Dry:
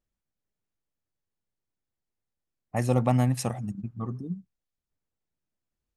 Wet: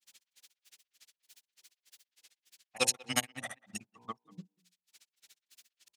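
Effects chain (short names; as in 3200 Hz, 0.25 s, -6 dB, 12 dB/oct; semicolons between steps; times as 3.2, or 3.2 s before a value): weighting filter D; grains 62 ms, grains 14/s, pitch spread up and down by 0 st; tilt +4.5 dB/oct; upward compressor, threshold -44 dBFS; de-hum 59.6 Hz, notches 17; grains 0.251 s, grains 3.3/s, spray 15 ms, pitch spread up and down by 0 st; speakerphone echo 0.19 s, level -23 dB; core saturation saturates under 1800 Hz; gain +4.5 dB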